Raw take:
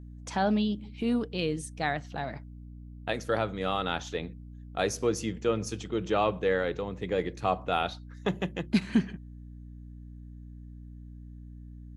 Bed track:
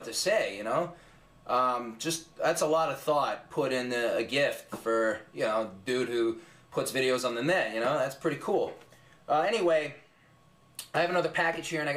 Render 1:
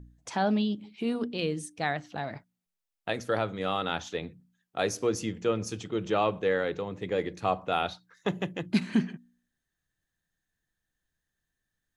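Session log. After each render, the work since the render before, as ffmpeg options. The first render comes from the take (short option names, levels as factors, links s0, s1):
-af "bandreject=f=60:t=h:w=4,bandreject=f=120:t=h:w=4,bandreject=f=180:t=h:w=4,bandreject=f=240:t=h:w=4,bandreject=f=300:t=h:w=4"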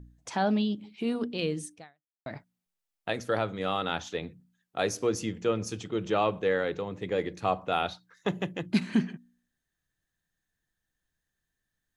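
-filter_complex "[0:a]asplit=2[s0][s1];[s0]atrim=end=2.26,asetpts=PTS-STARTPTS,afade=t=out:st=1.74:d=0.52:c=exp[s2];[s1]atrim=start=2.26,asetpts=PTS-STARTPTS,afade=t=in:d=0.004:c=hsin[s3];[s2][s3]concat=n=2:v=0:a=1"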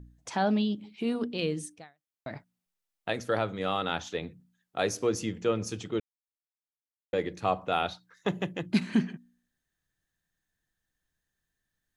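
-filter_complex "[0:a]asplit=3[s0][s1][s2];[s0]atrim=end=6,asetpts=PTS-STARTPTS,afade=t=out:st=5.996:d=0.004:c=hsin[s3];[s1]atrim=start=6:end=7.13,asetpts=PTS-STARTPTS,volume=0[s4];[s2]atrim=start=7.13,asetpts=PTS-STARTPTS,afade=t=in:d=0.004:c=hsin[s5];[s3][s4][s5]concat=n=3:v=0:a=1"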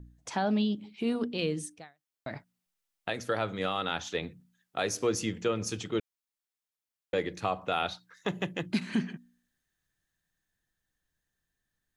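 -filter_complex "[0:a]acrossover=split=1100[s0][s1];[s1]dynaudnorm=f=220:g=21:m=1.5[s2];[s0][s2]amix=inputs=2:normalize=0,alimiter=limit=0.126:level=0:latency=1:release=199"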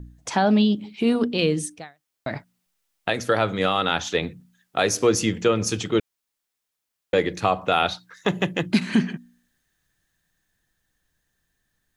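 -af "volume=2.99"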